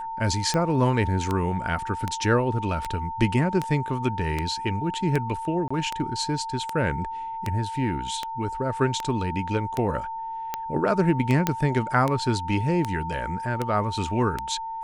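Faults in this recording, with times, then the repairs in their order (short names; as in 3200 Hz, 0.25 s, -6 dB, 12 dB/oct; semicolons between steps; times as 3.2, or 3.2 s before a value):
tick 78 rpm -12 dBFS
tone 900 Hz -30 dBFS
5.68–5.71 gap 25 ms
11.47 pop -6 dBFS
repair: de-click; notch 900 Hz, Q 30; interpolate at 5.68, 25 ms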